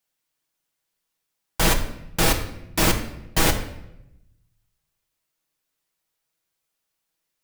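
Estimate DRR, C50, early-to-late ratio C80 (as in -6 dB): 2.5 dB, 9.5 dB, 12.0 dB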